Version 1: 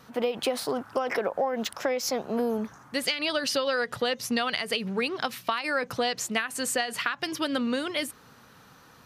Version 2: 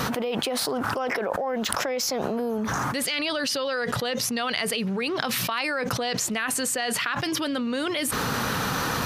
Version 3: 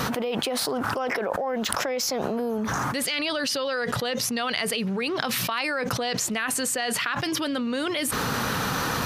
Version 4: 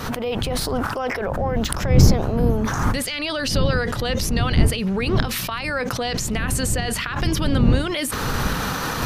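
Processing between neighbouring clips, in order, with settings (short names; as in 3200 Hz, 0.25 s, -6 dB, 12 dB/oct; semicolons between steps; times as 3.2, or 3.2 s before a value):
fast leveller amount 100%; gain -4 dB
nothing audible
recorder AGC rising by 67 dB/s; wind noise 130 Hz -16 dBFS; gain -6 dB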